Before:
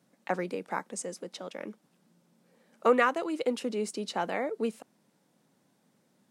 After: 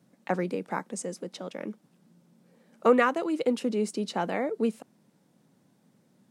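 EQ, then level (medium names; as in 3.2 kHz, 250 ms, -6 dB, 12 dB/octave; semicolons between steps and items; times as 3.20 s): bass shelf 290 Hz +9.5 dB; 0.0 dB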